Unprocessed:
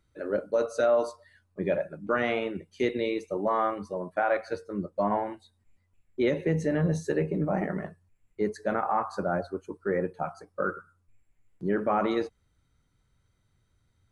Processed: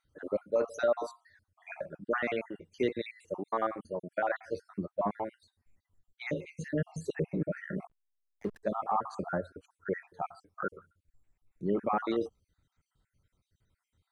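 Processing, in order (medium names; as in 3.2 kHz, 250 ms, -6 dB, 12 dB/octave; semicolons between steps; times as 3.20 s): random holes in the spectrogram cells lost 51%; 7.87–8.63 s: hysteresis with a dead band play -36 dBFS; trim -2.5 dB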